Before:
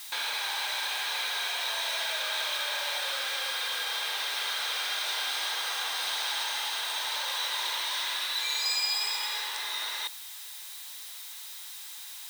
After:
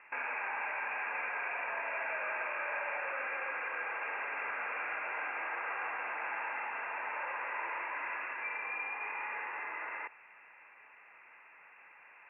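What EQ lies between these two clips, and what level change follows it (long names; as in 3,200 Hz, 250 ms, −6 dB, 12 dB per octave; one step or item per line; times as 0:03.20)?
Chebyshev low-pass filter 2,700 Hz, order 10
high-frequency loss of the air 130 metres
low-shelf EQ 180 Hz +9.5 dB
0.0 dB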